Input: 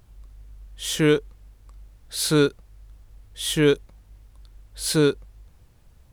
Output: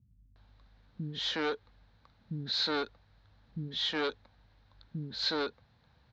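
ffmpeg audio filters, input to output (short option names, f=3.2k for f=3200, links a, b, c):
-filter_complex "[0:a]aresample=16000,asoftclip=type=tanh:threshold=-22dB,aresample=44100,highpass=110,equalizer=f=230:t=q:w=4:g=4,equalizer=f=370:t=q:w=4:g=-9,equalizer=f=870:t=q:w=4:g=4,equalizer=f=1.6k:t=q:w=4:g=6,equalizer=f=2.8k:t=q:w=4:g=-3,equalizer=f=4k:t=q:w=4:g=9,lowpass=f=4.4k:w=0.5412,lowpass=f=4.4k:w=1.3066,acrossover=split=240[a][b];[b]adelay=360[c];[a][c]amix=inputs=2:normalize=0,volume=-4dB"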